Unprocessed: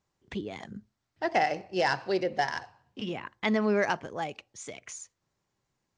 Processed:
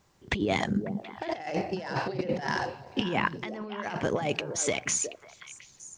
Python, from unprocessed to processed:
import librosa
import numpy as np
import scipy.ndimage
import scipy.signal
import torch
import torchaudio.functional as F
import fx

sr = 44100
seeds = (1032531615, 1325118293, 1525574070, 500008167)

y = fx.over_compress(x, sr, threshold_db=-39.0, ratio=-1.0)
y = fx.echo_stepped(y, sr, ms=182, hz=170.0, octaves=1.4, feedback_pct=70, wet_db=-4.0)
y = y * 10.0 ** (7.0 / 20.0)